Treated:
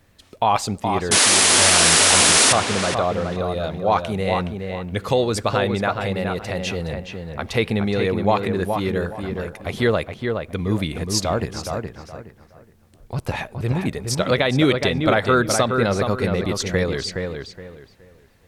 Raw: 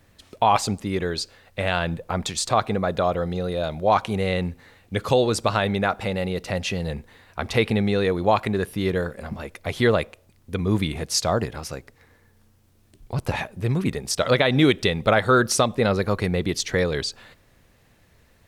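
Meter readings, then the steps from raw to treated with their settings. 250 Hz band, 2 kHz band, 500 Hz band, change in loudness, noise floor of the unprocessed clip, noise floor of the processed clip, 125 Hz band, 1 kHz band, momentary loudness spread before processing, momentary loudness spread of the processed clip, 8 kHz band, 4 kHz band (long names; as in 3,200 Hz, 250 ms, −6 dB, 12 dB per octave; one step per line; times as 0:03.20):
+1.5 dB, +4.5 dB, +1.5 dB, +4.0 dB, −59 dBFS, −53 dBFS, +1.5 dB, +2.0 dB, 12 LU, 17 LU, +13.0 dB, +8.0 dB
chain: sound drawn into the spectrogram noise, 0:01.11–0:02.53, 210–11,000 Hz −15 dBFS
feedback echo with a low-pass in the loop 419 ms, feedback 27%, low-pass 2,700 Hz, level −5 dB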